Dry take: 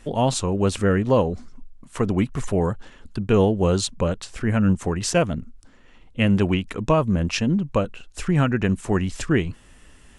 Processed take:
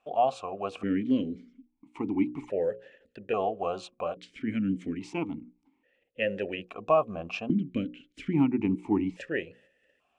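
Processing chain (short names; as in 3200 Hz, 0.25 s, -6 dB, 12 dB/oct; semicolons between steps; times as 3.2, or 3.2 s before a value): gate -45 dBFS, range -8 dB; 6.59–9.14 low shelf 420 Hz +5.5 dB; notches 60/120/180/240/300/360/420/480/540 Hz; vowel sequencer 1.2 Hz; gain +4 dB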